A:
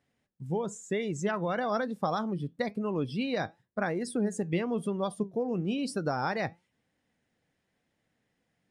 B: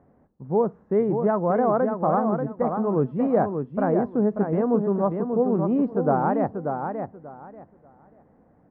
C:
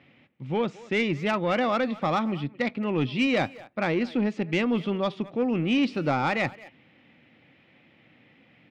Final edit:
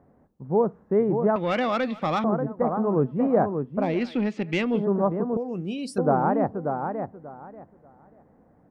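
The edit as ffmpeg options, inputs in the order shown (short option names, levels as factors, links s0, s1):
-filter_complex "[2:a]asplit=2[s0][s1];[1:a]asplit=4[s2][s3][s4][s5];[s2]atrim=end=1.362[s6];[s0]atrim=start=1.358:end=2.242[s7];[s3]atrim=start=2.238:end=4.02[s8];[s1]atrim=start=3.78:end=4.86[s9];[s4]atrim=start=4.62:end=5.372[s10];[0:a]atrim=start=5.368:end=5.982[s11];[s5]atrim=start=5.978[s12];[s6][s7]acrossfade=d=0.004:c1=hsin:c2=hsin[s13];[s13][s8]acrossfade=d=0.004:c1=hsin:c2=hsin[s14];[s14][s9]acrossfade=d=0.24:c1=tri:c2=tri[s15];[s15][s10]acrossfade=d=0.24:c1=tri:c2=tri[s16];[s16][s11]acrossfade=d=0.004:c1=hsin:c2=hsin[s17];[s17][s12]acrossfade=d=0.004:c1=hsin:c2=hsin"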